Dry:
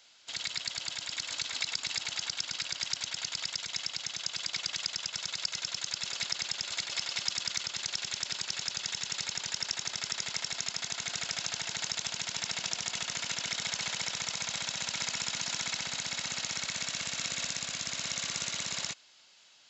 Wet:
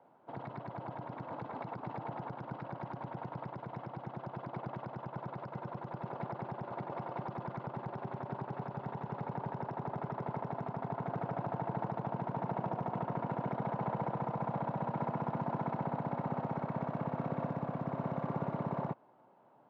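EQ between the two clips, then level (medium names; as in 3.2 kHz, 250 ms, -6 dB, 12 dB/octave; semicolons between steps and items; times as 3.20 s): Chebyshev band-pass 120–930 Hz, order 3; bass shelf 370 Hz +3.5 dB; +11.0 dB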